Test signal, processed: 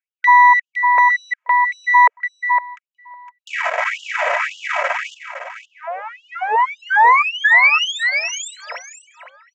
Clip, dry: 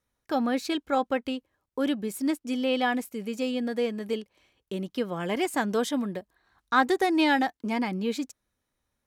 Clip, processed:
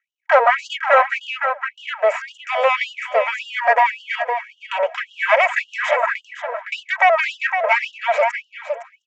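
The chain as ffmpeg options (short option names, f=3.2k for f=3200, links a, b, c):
-filter_complex "[0:a]acompressor=threshold=-28dB:ratio=6,aeval=exprs='max(val(0),0)':c=same,highshelf=f=3k:t=q:w=3:g=-11.5,aecho=1:1:3.1:0.67,asplit=2[a][b];[b]aecho=0:1:511:0.282[c];[a][c]amix=inputs=2:normalize=0,apsyclip=28.5dB,aresample=16000,aresample=44100,tiltshelf=f=970:g=6.5,asplit=2[d][e];[e]adelay=709,lowpass=f=1.1k:p=1,volume=-18.5dB,asplit=2[f][g];[g]adelay=709,lowpass=f=1.1k:p=1,volume=0.51,asplit=2[h][i];[i]adelay=709,lowpass=f=1.1k:p=1,volume=0.51,asplit=2[j][k];[k]adelay=709,lowpass=f=1.1k:p=1,volume=0.51[l];[f][h][j][l]amix=inputs=4:normalize=0[m];[d][m]amix=inputs=2:normalize=0,agate=range=-13dB:threshold=-23dB:ratio=16:detection=peak,afftfilt=real='re*gte(b*sr/1024,440*pow(2800/440,0.5+0.5*sin(2*PI*1.8*pts/sr)))':imag='im*gte(b*sr/1024,440*pow(2800/440,0.5+0.5*sin(2*PI*1.8*pts/sr)))':win_size=1024:overlap=0.75,volume=-1.5dB"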